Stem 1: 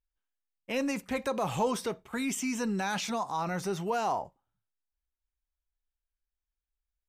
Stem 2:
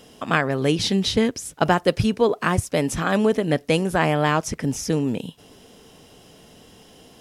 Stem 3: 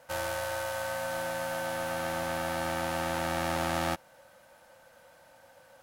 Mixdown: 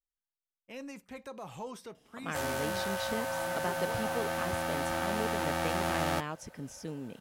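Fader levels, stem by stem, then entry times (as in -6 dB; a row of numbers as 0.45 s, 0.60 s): -13.0 dB, -18.0 dB, -1.0 dB; 0.00 s, 1.95 s, 2.25 s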